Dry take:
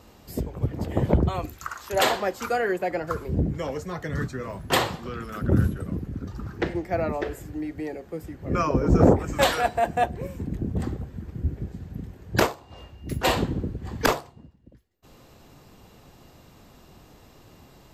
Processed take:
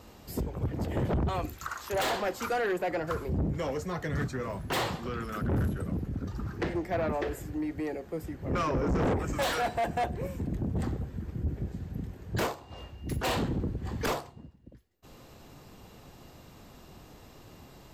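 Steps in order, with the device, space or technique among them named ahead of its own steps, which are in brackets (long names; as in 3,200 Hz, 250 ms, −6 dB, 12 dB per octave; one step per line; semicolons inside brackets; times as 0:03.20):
saturation between pre-emphasis and de-emphasis (high-shelf EQ 4,800 Hz +10.5 dB; soft clipping −24.5 dBFS, distortion −5 dB; high-shelf EQ 4,800 Hz −10.5 dB)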